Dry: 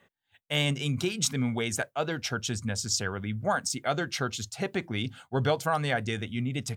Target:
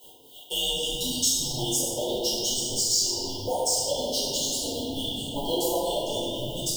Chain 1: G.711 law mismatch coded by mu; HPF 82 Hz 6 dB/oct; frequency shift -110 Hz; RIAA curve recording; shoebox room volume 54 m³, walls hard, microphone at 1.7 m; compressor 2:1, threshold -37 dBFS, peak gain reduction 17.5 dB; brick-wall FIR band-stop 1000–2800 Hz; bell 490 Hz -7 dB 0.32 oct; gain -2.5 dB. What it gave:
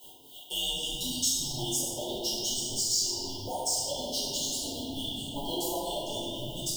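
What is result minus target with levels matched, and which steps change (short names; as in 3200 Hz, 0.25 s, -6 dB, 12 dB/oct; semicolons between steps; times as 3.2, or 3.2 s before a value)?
compressor: peak gain reduction +4 dB; 500 Hz band -4.0 dB
change: compressor 2:1, threshold -29 dBFS, peak gain reduction 13.5 dB; change: bell 490 Hz +2.5 dB 0.32 oct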